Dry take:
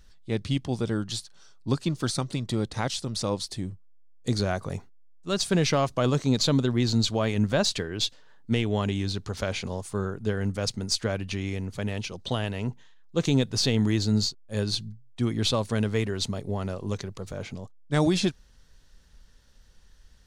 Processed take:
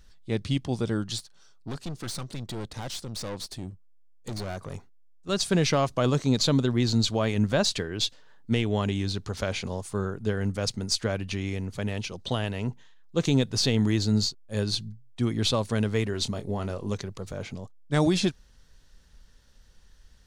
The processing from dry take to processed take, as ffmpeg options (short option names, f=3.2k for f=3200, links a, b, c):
-filter_complex "[0:a]asettb=1/sr,asplit=3[a][b][c];[a]atrim=end=1.184[d];[b]atrim=start=1.18:end=5.29,asetpts=PTS-STARTPTS,afade=t=in:d=0.004:c=qsin,afade=t=out:st=4.106:d=0.004:c=qsin,aeval=exprs='(tanh(35.5*val(0)+0.55)-tanh(0.55))/35.5':c=same[e];[c]atrim=start=5.286[f];[d][e]acrossfade=d=0.004:c1=hsin:c2=qsin[g];[g][f]acrossfade=d=0.004:c1=qsin:c2=hsin,asettb=1/sr,asplit=3[h][i][j];[h]atrim=end=16.114[k];[i]atrim=start=16.11:end=16.94,asetpts=PTS-STARTPTS,afade=t=in:d=0.004:c=qsin,afade=t=out:st=0.826:d=0.004:c=qsin,asplit=2[l][m];[m]adelay=24,volume=-10.5dB[n];[l][n]amix=inputs=2:normalize=0,atrim=end_sample=36603[o];[j]atrim=start=16.936[p];[k][o]acrossfade=d=0.004:c1=hsin:c2=qsin[q];[q][p]acrossfade=d=0.004:c1=qsin:c2=hsin"